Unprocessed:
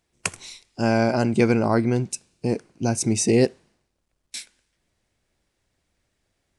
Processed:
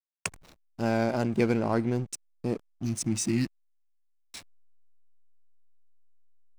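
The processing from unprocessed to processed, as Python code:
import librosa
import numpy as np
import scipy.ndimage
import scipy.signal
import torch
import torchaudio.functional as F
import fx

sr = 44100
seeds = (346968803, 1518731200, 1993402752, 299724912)

y = fx.spec_repair(x, sr, seeds[0], start_s=2.69, length_s=0.9, low_hz=350.0, high_hz=1700.0, source='both')
y = fx.backlash(y, sr, play_db=-28.5)
y = y * librosa.db_to_amplitude(-6.0)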